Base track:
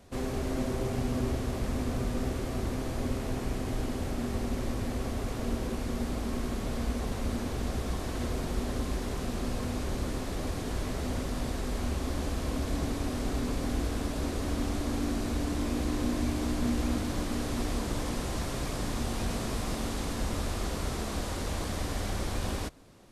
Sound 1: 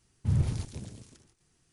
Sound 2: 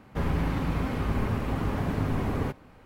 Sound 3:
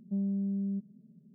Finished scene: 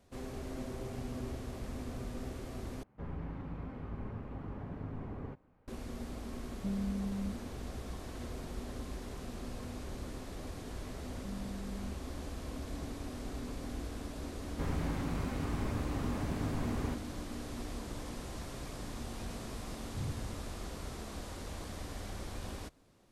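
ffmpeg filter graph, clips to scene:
-filter_complex "[2:a]asplit=2[a][b];[3:a]asplit=2[c][d];[0:a]volume=-10dB[e];[a]lowpass=f=1.1k:p=1[f];[e]asplit=2[g][h];[g]atrim=end=2.834[i];[f]atrim=end=2.85,asetpts=PTS-STARTPTS,volume=-14dB[j];[h]atrim=start=5.676[k];[c]atrim=end=1.34,asetpts=PTS-STARTPTS,volume=-5dB,afade=t=in:d=0.004:c=hsin,afade=t=out:st=1.336:d=0.004:c=hsin,adelay=6520[l];[d]atrim=end=1.34,asetpts=PTS-STARTPTS,volume=-13dB,afade=t=in:d=0.004:c=hsin,afade=t=out:st=1.336:d=0.004:c=hsin,adelay=11130[m];[b]atrim=end=2.85,asetpts=PTS-STARTPTS,volume=-9dB,afade=t=in:d=0.004:c=hsin,afade=t=out:st=2.846:d=0.004:c=hsin,adelay=14430[n];[1:a]atrim=end=1.72,asetpts=PTS-STARTPTS,volume=-13.5dB,afade=t=in:d=0.004:c=hsin,afade=t=out:st=1.716:d=0.004:c=hsin,adelay=19690[o];[i][j]acrossfade=d=0.004:c1=hsin:c2=hsin[p];[p][k]acrossfade=d=0.004:c1=hsin:c2=hsin[q];[q][l][m][n][o]amix=inputs=5:normalize=0"

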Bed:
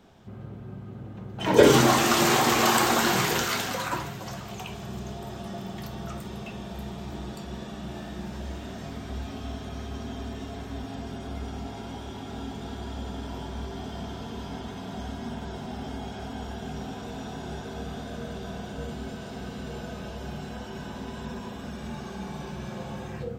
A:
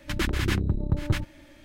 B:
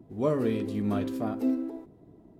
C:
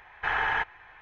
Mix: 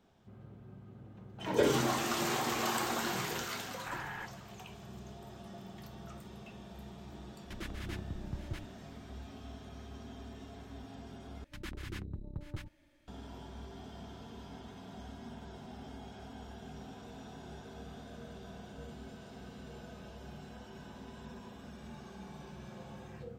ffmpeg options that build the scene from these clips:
-filter_complex "[1:a]asplit=2[a][b];[0:a]volume=-12dB,asplit=2[c][d];[c]atrim=end=11.444[e];[b]atrim=end=1.64,asetpts=PTS-STARTPTS,volume=-17dB[f];[d]atrim=start=13.076[g];[3:a]atrim=end=1.01,asetpts=PTS-STARTPTS,volume=-16.5dB,afade=t=in:d=0.004:c=hsin,afade=t=out:st=1.006:d=0.004:c=hsin,adelay=3630[h];[a]atrim=end=1.64,asetpts=PTS-STARTPTS,volume=-16.5dB,afade=t=in:d=0.004:c=hsin,afade=t=out:st=1.636:d=0.004:c=hsin,adelay=7410[i];[e][f]acrossfade=d=0.004:c1=hsin:c2=hsin[j];[j][g]acrossfade=d=0.004:c1=hsin:c2=hsin[k];[k][h][i]amix=inputs=3:normalize=0"

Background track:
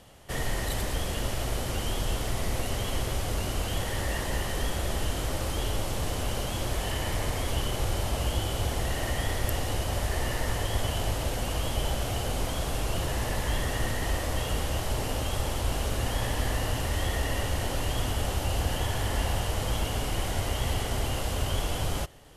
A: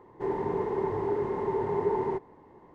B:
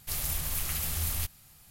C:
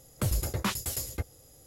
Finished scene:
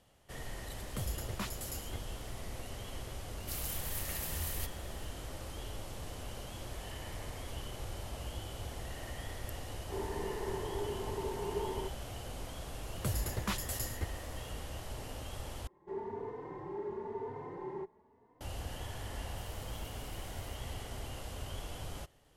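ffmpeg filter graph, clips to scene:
-filter_complex "[3:a]asplit=2[a][b];[2:a]asplit=2[c][d];[1:a]asplit=2[e][f];[0:a]volume=-13.5dB[g];[f]asplit=2[h][i];[i]adelay=3.3,afreqshift=1[j];[h][j]amix=inputs=2:normalize=1[k];[d]acompressor=threshold=-39dB:ratio=6:attack=3.2:release=140:knee=1:detection=peak[l];[g]asplit=2[m][n];[m]atrim=end=15.674[o];[k]atrim=end=2.74,asetpts=PTS-STARTPTS,volume=-9dB[p];[n]atrim=start=18.406[q];[a]atrim=end=1.66,asetpts=PTS-STARTPTS,volume=-10dB,afade=t=in:d=0.004:c=hsin,afade=t=out:st=1.656:d=0.004:c=hsin,adelay=750[r];[c]atrim=end=1.7,asetpts=PTS-STARTPTS,volume=-7.5dB,afade=t=in:d=0.004:c=hsin,afade=t=out:st=1.696:d=0.004:c=hsin,adelay=3400[s];[e]atrim=end=2.74,asetpts=PTS-STARTPTS,volume=-10dB,afade=t=in:d=0.004:c=hsin,afade=t=out:st=2.736:d=0.004:c=hsin,adelay=427770S[t];[b]atrim=end=1.66,asetpts=PTS-STARTPTS,volume=-6dB,afade=t=in:d=0.004:c=hsin,afade=t=out:st=1.656:d=0.004:c=hsin,adelay=12830[u];[l]atrim=end=1.7,asetpts=PTS-STARTPTS,volume=-16dB,afade=t=in:d=0.004:c=hsin,afade=t=out:st=1.696:d=0.004:c=hsin,adelay=19300[v];[o][p]acrossfade=d=0.004:c1=hsin:c2=hsin[w];[w][q]acrossfade=d=0.004:c1=hsin:c2=hsin[x];[x][r][s][t][u][v]amix=inputs=6:normalize=0"

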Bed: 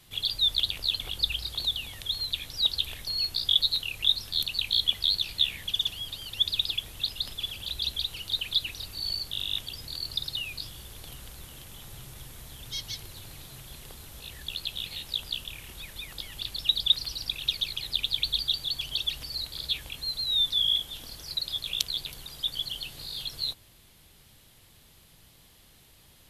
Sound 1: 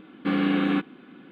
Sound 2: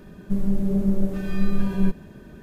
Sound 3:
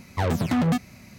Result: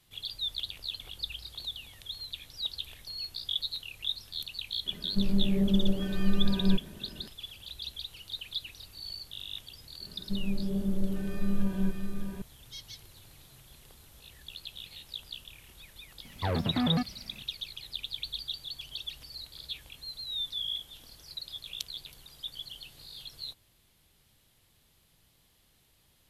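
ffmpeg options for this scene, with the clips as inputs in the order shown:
-filter_complex "[2:a]asplit=2[a][b];[0:a]volume=-9.5dB[c];[b]aecho=1:1:617:0.596[d];[3:a]acrossover=split=3500[e][f];[f]acompressor=threshold=-55dB:ratio=4:attack=1:release=60[g];[e][g]amix=inputs=2:normalize=0[h];[a]atrim=end=2.42,asetpts=PTS-STARTPTS,volume=-4dB,afade=t=in:d=0.004:c=hsin,afade=t=out:st=2.416:d=0.004:c=hsin,adelay=4860[i];[d]atrim=end=2.42,asetpts=PTS-STARTPTS,volume=-9dB,afade=t=in:d=0.004:c=hsin,afade=t=out:st=2.416:d=0.004:c=hsin,adelay=10000[j];[h]atrim=end=1.18,asetpts=PTS-STARTPTS,volume=-6dB,afade=t=in:d=0.004:c=hsin,afade=t=out:st=1.176:d=0.004:c=hsin,adelay=16250[k];[c][i][j][k]amix=inputs=4:normalize=0"

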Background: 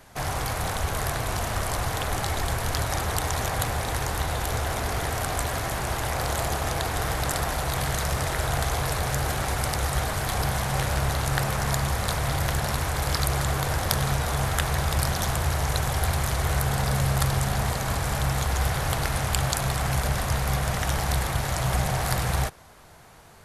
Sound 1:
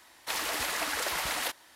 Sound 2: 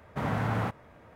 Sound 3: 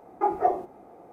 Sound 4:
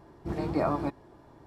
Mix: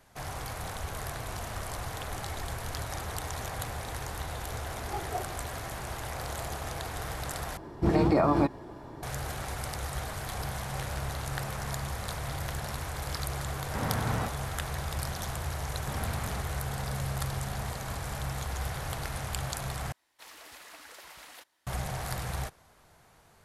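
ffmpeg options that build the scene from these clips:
-filter_complex "[2:a]asplit=2[a][b];[0:a]volume=-9.5dB[c];[4:a]alimiter=level_in=23dB:limit=-1dB:release=50:level=0:latency=1[d];[b]asoftclip=type=tanh:threshold=-32dB[e];[c]asplit=3[f][g][h];[f]atrim=end=7.574[i];[d]atrim=end=1.46,asetpts=PTS-STARTPTS,volume=-13.5dB[j];[g]atrim=start=9.026:end=19.924[k];[1:a]atrim=end=1.75,asetpts=PTS-STARTPTS,volume=-17.5dB[l];[h]atrim=start=21.666[m];[3:a]atrim=end=1.12,asetpts=PTS-STARTPTS,volume=-13.5dB,afade=t=in:d=0.004:c=hsin,afade=t=out:st=1.116:d=0.004:c=hsin,adelay=4700[n];[a]atrim=end=1.15,asetpts=PTS-STARTPTS,volume=-2.5dB,afade=t=in:d=0.004:c=hsin,afade=t=out:st=1.146:d=0.004:c=hsin,adelay=13580[o];[e]atrim=end=1.15,asetpts=PTS-STARTPTS,volume=-3.5dB,afade=t=in:d=0.004:c=hsin,afade=t=out:st=1.146:d=0.004:c=hsin,adelay=15710[p];[i][j]acrossfade=d=0.004:c1=hsin:c2=hsin[q];[q][k]acrossfade=d=0.004:c1=hsin:c2=hsin[r];[r][l]acrossfade=d=0.004:c1=hsin:c2=hsin[s];[s][m]acrossfade=d=0.004:c1=hsin:c2=hsin[t];[t][n][o][p]amix=inputs=4:normalize=0"

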